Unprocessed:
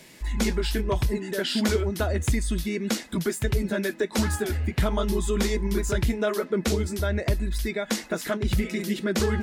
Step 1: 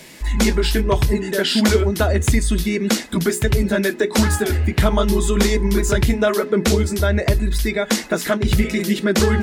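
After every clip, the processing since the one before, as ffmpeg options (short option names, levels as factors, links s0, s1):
-af "bandreject=f=60:t=h:w=6,bandreject=f=120:t=h:w=6,bandreject=f=180:t=h:w=6,bandreject=f=240:t=h:w=6,bandreject=f=300:t=h:w=6,bandreject=f=360:t=h:w=6,bandreject=f=420:t=h:w=6,volume=2.66"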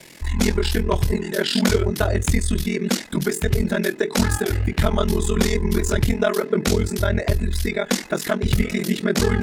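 -af "aeval=exprs='val(0)*sin(2*PI*21*n/s)':c=same"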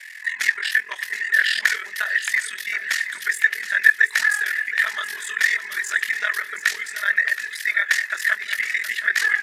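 -filter_complex "[0:a]highpass=f=1800:t=q:w=15,asplit=2[s0][s1];[s1]aecho=0:1:722|1444|2166|2888:0.251|0.103|0.0422|0.0173[s2];[s0][s2]amix=inputs=2:normalize=0,aresample=32000,aresample=44100,volume=0.668"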